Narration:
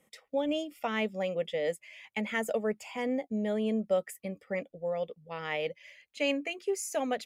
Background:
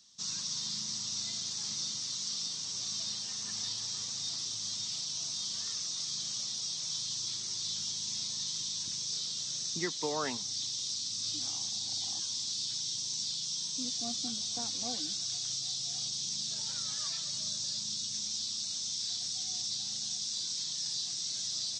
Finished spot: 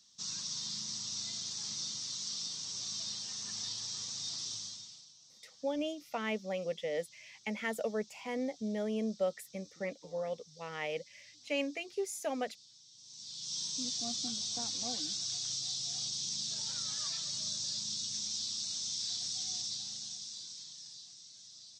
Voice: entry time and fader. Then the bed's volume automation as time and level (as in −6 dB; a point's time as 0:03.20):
5.30 s, −4.5 dB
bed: 0:04.56 −3 dB
0:05.17 −23.5 dB
0:12.91 −23.5 dB
0:13.57 −1.5 dB
0:19.52 −1.5 dB
0:21.29 −18 dB